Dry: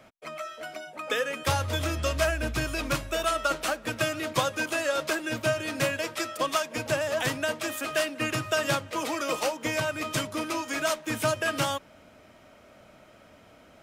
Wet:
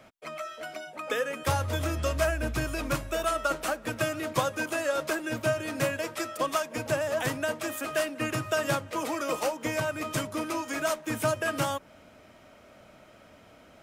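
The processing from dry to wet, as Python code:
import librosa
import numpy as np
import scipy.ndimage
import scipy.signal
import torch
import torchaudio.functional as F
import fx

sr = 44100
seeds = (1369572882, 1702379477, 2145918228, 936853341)

y = fx.dynamic_eq(x, sr, hz=3700.0, q=0.71, threshold_db=-42.0, ratio=4.0, max_db=-6)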